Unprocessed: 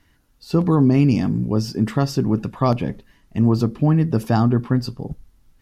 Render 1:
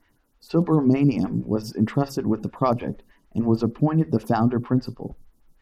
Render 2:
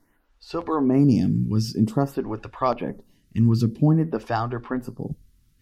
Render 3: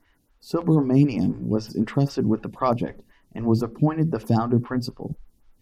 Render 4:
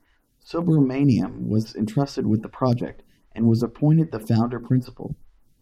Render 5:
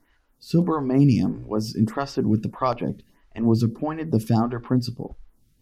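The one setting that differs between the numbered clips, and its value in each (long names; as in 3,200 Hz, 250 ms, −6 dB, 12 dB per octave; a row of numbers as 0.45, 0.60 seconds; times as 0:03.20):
phaser with staggered stages, speed: 6.5, 0.51, 3.9, 2.5, 1.6 Hertz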